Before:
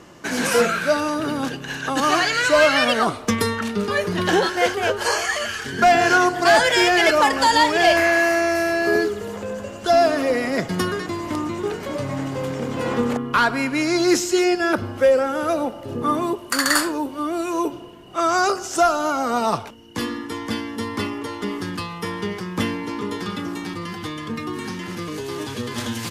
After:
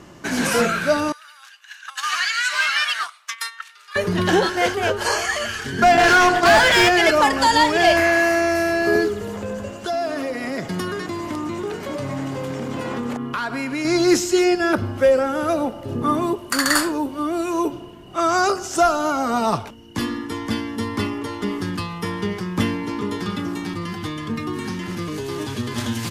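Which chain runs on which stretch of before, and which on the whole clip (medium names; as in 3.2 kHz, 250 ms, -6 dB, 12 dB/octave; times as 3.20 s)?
1.12–3.96 s: high-pass 1.3 kHz 24 dB/octave + gate -29 dBFS, range -11 dB + loudspeaker Doppler distortion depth 0.13 ms
5.97–6.89 s: gate with hold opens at -12 dBFS, closes at -19 dBFS + overdrive pedal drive 19 dB, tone 4.1 kHz, clips at -8.5 dBFS
9.73–13.85 s: bass shelf 120 Hz -9.5 dB + compression 3:1, threshold -24 dBFS
whole clip: bass shelf 210 Hz +6 dB; band-stop 490 Hz, Q 15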